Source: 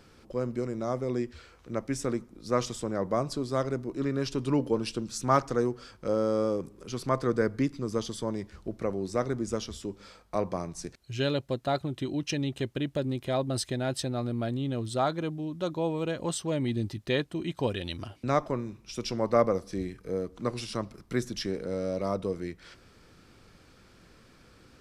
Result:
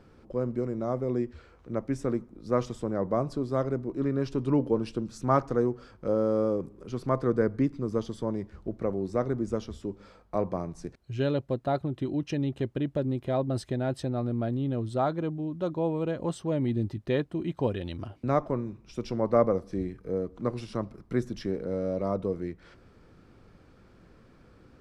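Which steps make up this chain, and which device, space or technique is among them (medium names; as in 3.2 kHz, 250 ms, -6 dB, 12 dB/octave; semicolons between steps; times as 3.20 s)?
through cloth (treble shelf 2.1 kHz -15 dB); trim +2 dB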